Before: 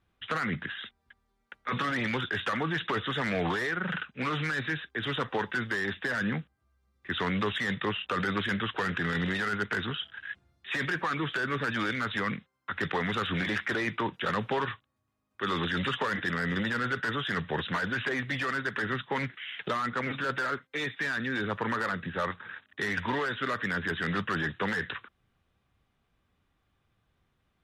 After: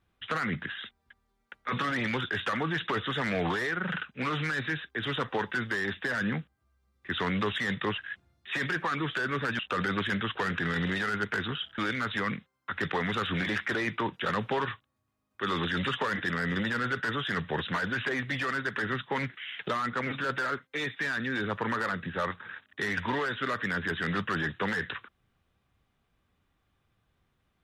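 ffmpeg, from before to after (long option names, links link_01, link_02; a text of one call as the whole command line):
ffmpeg -i in.wav -filter_complex "[0:a]asplit=4[link_01][link_02][link_03][link_04];[link_01]atrim=end=7.982[link_05];[link_02]atrim=start=10.168:end=11.782[link_06];[link_03]atrim=start=7.978:end=10.172[link_07];[link_04]atrim=start=11.778[link_08];[link_05][link_06]acrossfade=duration=0.004:curve1=hsin:curve2=hsin[link_09];[link_09][link_07]acrossfade=duration=0.004:curve1=hsin:curve2=hsin[link_10];[link_10][link_08]acrossfade=duration=0.004:curve1=hsin:curve2=hsin" out.wav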